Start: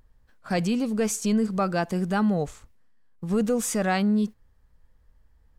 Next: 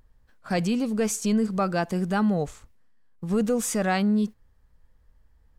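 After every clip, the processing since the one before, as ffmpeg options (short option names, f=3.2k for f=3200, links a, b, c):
-af anull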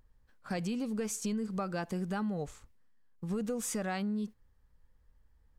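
-af "bandreject=f=660:w=12,acompressor=threshold=-25dB:ratio=6,volume=-6dB"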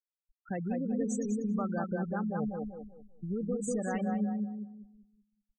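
-filter_complex "[0:a]asplit=2[a][b];[b]aecho=0:1:195|390|585|780|975:0.631|0.265|0.111|0.0467|0.0196[c];[a][c]amix=inputs=2:normalize=0,afftfilt=real='re*gte(hypot(re,im),0.0282)':imag='im*gte(hypot(re,im),0.0282)':win_size=1024:overlap=0.75,asplit=2[d][e];[e]adelay=191,lowpass=f=1k:p=1,volume=-5.5dB,asplit=2[f][g];[g]adelay=191,lowpass=f=1k:p=1,volume=0.28,asplit=2[h][i];[i]adelay=191,lowpass=f=1k:p=1,volume=0.28,asplit=2[j][k];[k]adelay=191,lowpass=f=1k:p=1,volume=0.28[l];[f][h][j][l]amix=inputs=4:normalize=0[m];[d][m]amix=inputs=2:normalize=0"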